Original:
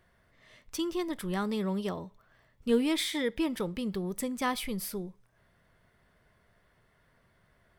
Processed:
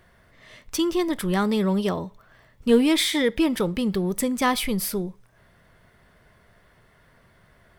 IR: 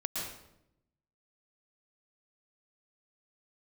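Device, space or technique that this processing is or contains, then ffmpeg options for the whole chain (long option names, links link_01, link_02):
parallel distortion: -filter_complex "[0:a]asplit=2[link_01][link_02];[link_02]asoftclip=type=hard:threshold=-31dB,volume=-11dB[link_03];[link_01][link_03]amix=inputs=2:normalize=0,volume=7.5dB"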